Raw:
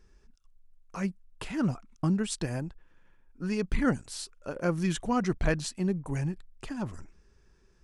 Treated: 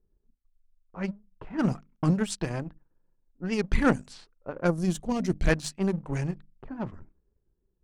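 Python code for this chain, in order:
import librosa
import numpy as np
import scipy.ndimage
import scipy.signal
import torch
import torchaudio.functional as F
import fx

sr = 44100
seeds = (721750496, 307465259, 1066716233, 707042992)

y = fx.hum_notches(x, sr, base_hz=50, count=6)
y = fx.power_curve(y, sr, exponent=1.4)
y = fx.env_lowpass(y, sr, base_hz=530.0, full_db=-30.0)
y = fx.peak_eq(y, sr, hz=fx.line((4.67, 2800.0), (5.48, 890.0)), db=-14.0, octaves=1.7, at=(4.67, 5.48), fade=0.02)
y = fx.record_warp(y, sr, rpm=78.0, depth_cents=100.0)
y = F.gain(torch.from_numpy(y), 7.0).numpy()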